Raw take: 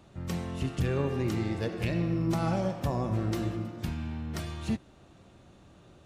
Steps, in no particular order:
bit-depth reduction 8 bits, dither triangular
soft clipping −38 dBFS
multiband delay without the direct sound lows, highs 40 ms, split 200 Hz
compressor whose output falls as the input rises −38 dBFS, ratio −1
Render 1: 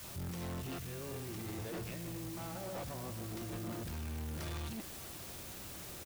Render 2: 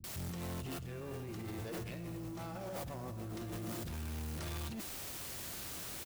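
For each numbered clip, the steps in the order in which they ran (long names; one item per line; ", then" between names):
multiband delay without the direct sound, then compressor whose output falls as the input rises, then bit-depth reduction, then soft clipping
bit-depth reduction, then multiband delay without the direct sound, then compressor whose output falls as the input rises, then soft clipping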